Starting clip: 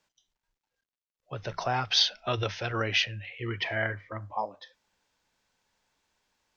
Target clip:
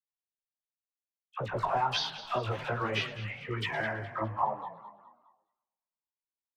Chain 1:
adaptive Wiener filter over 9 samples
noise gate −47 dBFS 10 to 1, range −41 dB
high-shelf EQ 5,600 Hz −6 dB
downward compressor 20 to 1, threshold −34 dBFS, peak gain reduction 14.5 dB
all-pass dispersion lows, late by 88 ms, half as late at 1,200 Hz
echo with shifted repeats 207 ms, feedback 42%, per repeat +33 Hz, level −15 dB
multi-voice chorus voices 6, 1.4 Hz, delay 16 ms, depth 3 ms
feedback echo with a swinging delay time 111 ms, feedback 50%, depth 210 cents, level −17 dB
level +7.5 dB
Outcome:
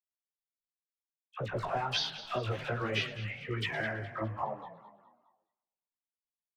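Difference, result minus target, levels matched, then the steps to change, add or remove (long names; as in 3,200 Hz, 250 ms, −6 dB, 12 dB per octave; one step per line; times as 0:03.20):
1,000 Hz band −3.5 dB
add after downward compressor: parametric band 950 Hz +9 dB 0.65 octaves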